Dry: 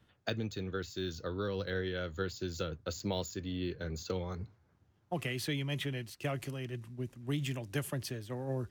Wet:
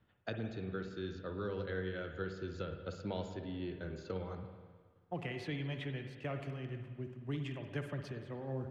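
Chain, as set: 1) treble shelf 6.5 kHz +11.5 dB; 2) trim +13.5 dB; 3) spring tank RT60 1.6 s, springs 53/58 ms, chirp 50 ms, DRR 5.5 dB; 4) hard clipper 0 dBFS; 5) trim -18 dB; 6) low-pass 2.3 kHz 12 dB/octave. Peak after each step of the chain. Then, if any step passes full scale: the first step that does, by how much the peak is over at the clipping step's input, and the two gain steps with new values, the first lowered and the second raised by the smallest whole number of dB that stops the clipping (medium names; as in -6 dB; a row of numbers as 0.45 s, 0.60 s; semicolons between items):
-17.0 dBFS, -3.5 dBFS, -3.5 dBFS, -3.5 dBFS, -21.5 dBFS, -25.5 dBFS; nothing clips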